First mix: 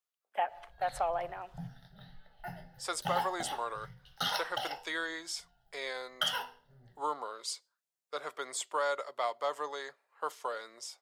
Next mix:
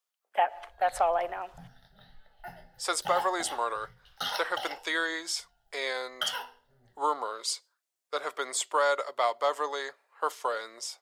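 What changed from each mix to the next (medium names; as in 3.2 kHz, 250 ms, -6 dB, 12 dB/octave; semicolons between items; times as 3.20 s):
speech +6.5 dB; master: add peaking EQ 150 Hz -10.5 dB 0.73 oct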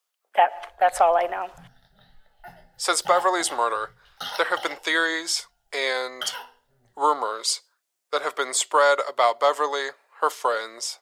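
speech +7.5 dB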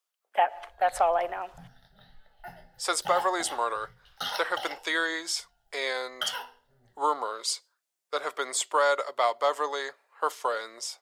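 speech -5.5 dB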